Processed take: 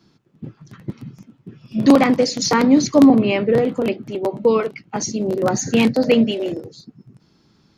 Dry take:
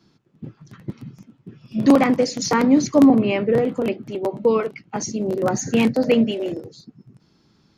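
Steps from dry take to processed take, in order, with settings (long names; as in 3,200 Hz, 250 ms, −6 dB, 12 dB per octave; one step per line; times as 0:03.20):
dynamic equaliser 4,100 Hz, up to +5 dB, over −45 dBFS, Q 1.7
level +2 dB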